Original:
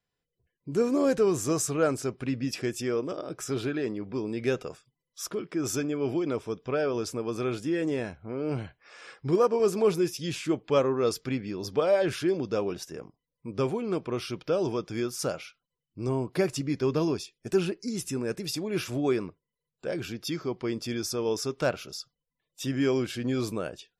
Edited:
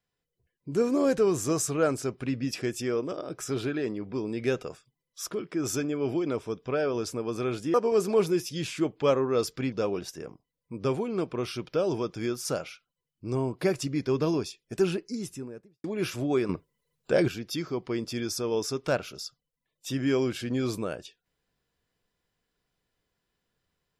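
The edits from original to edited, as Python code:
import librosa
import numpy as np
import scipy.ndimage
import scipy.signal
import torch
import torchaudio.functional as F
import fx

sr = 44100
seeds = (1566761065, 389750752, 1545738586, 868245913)

y = fx.studio_fade_out(x, sr, start_s=17.7, length_s=0.88)
y = fx.edit(y, sr, fx.cut(start_s=7.74, length_s=1.68),
    fx.cut(start_s=11.4, length_s=1.06),
    fx.clip_gain(start_s=19.23, length_s=0.79, db=9.0), tone=tone)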